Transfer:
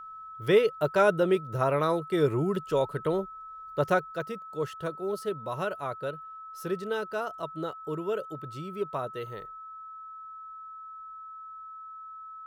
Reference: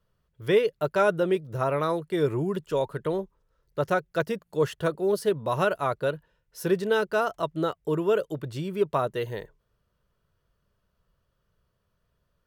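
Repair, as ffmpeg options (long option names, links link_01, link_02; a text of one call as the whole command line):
ffmpeg -i in.wav -af "bandreject=frequency=1300:width=30,asetnsamples=nb_out_samples=441:pad=0,asendcmd='4.12 volume volume 7.5dB',volume=0dB" out.wav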